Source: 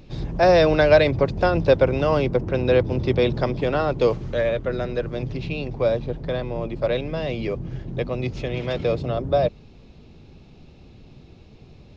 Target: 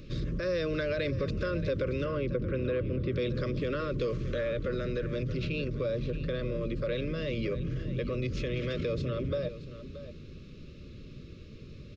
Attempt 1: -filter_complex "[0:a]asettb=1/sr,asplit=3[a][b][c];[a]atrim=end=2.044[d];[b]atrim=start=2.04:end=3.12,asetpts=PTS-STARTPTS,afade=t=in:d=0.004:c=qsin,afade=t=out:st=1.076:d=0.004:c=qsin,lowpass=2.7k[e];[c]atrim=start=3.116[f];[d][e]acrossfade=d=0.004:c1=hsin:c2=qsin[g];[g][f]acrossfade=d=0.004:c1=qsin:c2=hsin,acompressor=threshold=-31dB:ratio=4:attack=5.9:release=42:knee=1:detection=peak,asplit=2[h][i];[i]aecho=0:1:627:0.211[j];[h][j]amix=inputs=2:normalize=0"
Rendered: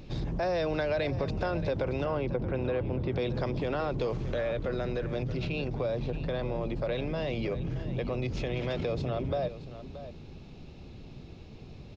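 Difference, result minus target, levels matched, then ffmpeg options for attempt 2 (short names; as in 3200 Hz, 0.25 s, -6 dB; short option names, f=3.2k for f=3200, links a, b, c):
1000 Hz band +7.0 dB
-filter_complex "[0:a]asettb=1/sr,asplit=3[a][b][c];[a]atrim=end=2.044[d];[b]atrim=start=2.04:end=3.12,asetpts=PTS-STARTPTS,afade=t=in:d=0.004:c=qsin,afade=t=out:st=1.076:d=0.004:c=qsin,lowpass=2.7k[e];[c]atrim=start=3.116[f];[d][e]acrossfade=d=0.004:c1=hsin:c2=qsin[g];[g][f]acrossfade=d=0.004:c1=qsin:c2=hsin,acompressor=threshold=-31dB:ratio=4:attack=5.9:release=42:knee=1:detection=peak,asuperstop=centerf=810:order=12:qfactor=1.7,asplit=2[h][i];[i]aecho=0:1:627:0.211[j];[h][j]amix=inputs=2:normalize=0"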